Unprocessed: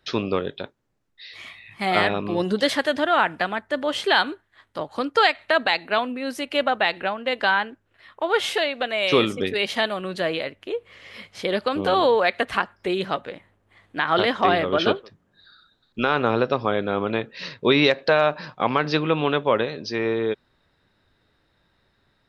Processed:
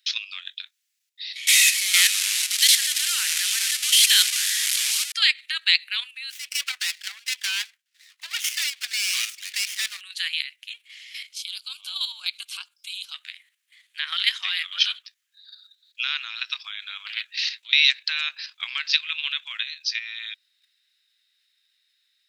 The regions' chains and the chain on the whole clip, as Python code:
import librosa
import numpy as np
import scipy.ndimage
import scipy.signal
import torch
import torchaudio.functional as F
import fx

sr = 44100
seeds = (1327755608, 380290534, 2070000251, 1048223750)

y = fx.chain(x, sr, fx.delta_mod(bps=64000, step_db=-18.0),
    fx.highpass(hz=440.0, slope=12), at=(1.47, 5.12))
y = fx.chain(y, sr, fx.dispersion(late='lows', ms=41.0, hz=610.0),
    fx.running_max(window=9), at=(6.3, 10.01))
y = fx.chain(y, sr, fx.highpass(hz=390.0, slope=6),
    fx.fixed_phaser(hz=770.0, stages=4), at=(11.33, 13.14))
y = fx.chain(y, sr, fx.over_compress(threshold_db=-26.0, ratio=-1.0),
    fx.doppler_dist(depth_ms=0.31), at=(17.06, 17.73))
y = scipy.signal.sosfilt(scipy.signal.cheby2(4, 80, 370.0, 'highpass', fs=sr, output='sos'), y)
y = fx.level_steps(y, sr, step_db=9)
y = fx.high_shelf(y, sr, hz=3300.0, db=10.5)
y = y * librosa.db_to_amplitude(5.5)